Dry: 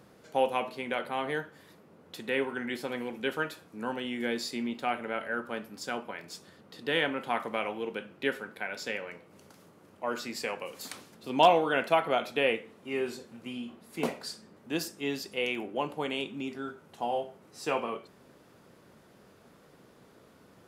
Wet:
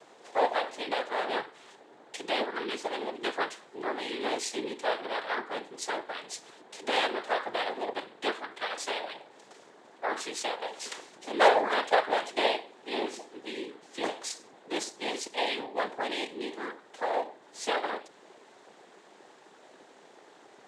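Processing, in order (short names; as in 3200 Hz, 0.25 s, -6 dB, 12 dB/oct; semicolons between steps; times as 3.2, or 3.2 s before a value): noise vocoder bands 6; in parallel at 0 dB: compressor, threshold -40 dBFS, peak gain reduction 22.5 dB; on the sum: Chebyshev high-pass 440 Hz, order 2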